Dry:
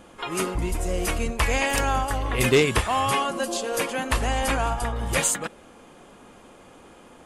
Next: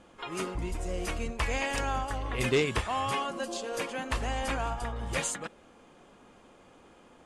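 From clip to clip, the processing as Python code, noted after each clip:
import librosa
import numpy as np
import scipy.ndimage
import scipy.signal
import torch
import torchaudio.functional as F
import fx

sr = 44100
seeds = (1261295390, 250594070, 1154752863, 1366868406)

y = scipy.signal.sosfilt(scipy.signal.butter(2, 7900.0, 'lowpass', fs=sr, output='sos'), x)
y = F.gain(torch.from_numpy(y), -7.5).numpy()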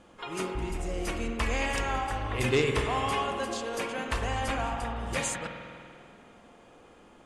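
y = fx.rev_spring(x, sr, rt60_s=2.3, pass_ms=(48,), chirp_ms=65, drr_db=3.5)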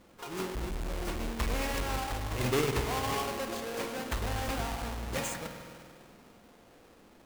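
y = fx.halfwave_hold(x, sr)
y = F.gain(torch.from_numpy(y), -7.5).numpy()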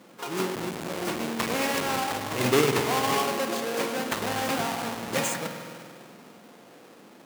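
y = scipy.signal.sosfilt(scipy.signal.butter(4, 140.0, 'highpass', fs=sr, output='sos'), x)
y = F.gain(torch.from_numpy(y), 7.5).numpy()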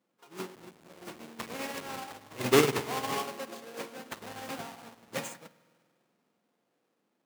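y = fx.upward_expand(x, sr, threshold_db=-37.0, expansion=2.5)
y = F.gain(torch.from_numpy(y), 1.5).numpy()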